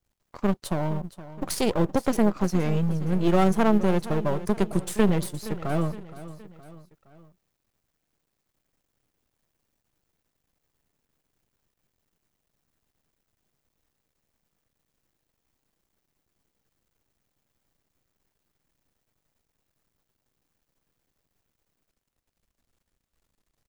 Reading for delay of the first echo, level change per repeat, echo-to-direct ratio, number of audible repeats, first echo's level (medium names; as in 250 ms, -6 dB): 468 ms, -6.0 dB, -14.5 dB, 3, -15.5 dB